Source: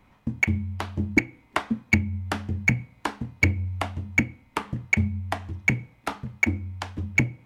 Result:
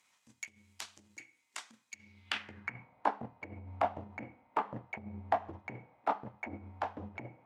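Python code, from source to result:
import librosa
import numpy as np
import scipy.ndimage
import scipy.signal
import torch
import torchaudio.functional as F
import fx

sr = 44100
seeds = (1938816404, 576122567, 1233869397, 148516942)

y = fx.transient(x, sr, attack_db=-11, sustain_db=-7)
y = fx.over_compress(y, sr, threshold_db=-32.0, ratio=-1.0)
y = fx.filter_sweep_bandpass(y, sr, from_hz=7300.0, to_hz=740.0, start_s=1.92, end_s=2.94, q=2.0)
y = y * 10.0 ** (8.0 / 20.0)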